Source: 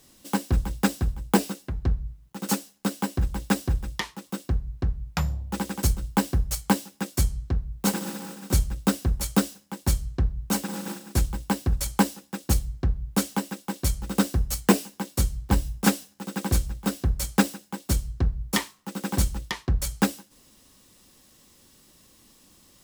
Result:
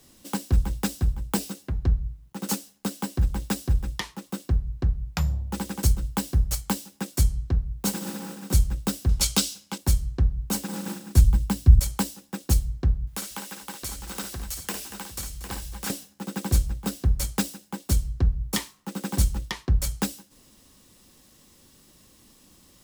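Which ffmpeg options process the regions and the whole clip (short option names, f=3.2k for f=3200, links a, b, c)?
-filter_complex "[0:a]asettb=1/sr,asplit=3[a][b][c];[a]atrim=end=9.094[d];[b]atrim=start=9.09:end=9.78,asetpts=PTS-STARTPTS,afade=t=in:d=0.004:c=qsin,afade=t=out:st=0.686:d=0.004:c=qsin,equalizer=f=4.2k:t=o:w=2.7:g=12,bandreject=f=1.8k:w=7.8[e];[c]atrim=start=9.776[f];[d][e]acrossfade=d=0.004:c1=hsin:c2=qsin[g];[g][f]acrossfade=d=0.004:c1=qsin:c2=hsin,asettb=1/sr,asplit=3[h][i][j];[h]atrim=end=10.684[k];[i]atrim=start=10.68:end=11.79,asetpts=PTS-STARTPTS,afade=t=in:d=0.004:c=qsin,afade=t=out:st=1.106:d=0.004:c=qsin,bandreject=f=50:t=h:w=6,bandreject=f=100:t=h:w=6,bandreject=f=150:t=h:w=6,asubboost=boost=8.5:cutoff=240[l];[j]atrim=start=11.786[m];[k][l]acrossfade=d=0.004:c1=hsin:c2=qsin[n];[n][m]acrossfade=d=0.004:c1=qsin:c2=hsin,asettb=1/sr,asplit=3[o][p][q];[o]atrim=end=13.074[r];[p]atrim=start=13.07:end=15.9,asetpts=PTS-STARTPTS,afade=t=in:d=0.004:c=qsin,afade=t=out:st=2.826:d=0.004:c=qsin,tiltshelf=f=670:g=-8,acompressor=threshold=-39dB:ratio=2:attack=3.2:release=140:knee=1:detection=peak,aecho=1:1:55|234|546|753:0.398|0.224|0.1|0.282,atrim=end_sample=124803[s];[q]atrim=start=15.896[t];[r][s]acrossfade=d=0.004:c1=hsin:c2=qsin[u];[u][t]acrossfade=d=0.004:c1=qsin:c2=hsin,acrossover=split=120|3000[v][w][x];[w]acompressor=threshold=-32dB:ratio=2.5[y];[v][y][x]amix=inputs=3:normalize=0,lowshelf=f=380:g=3"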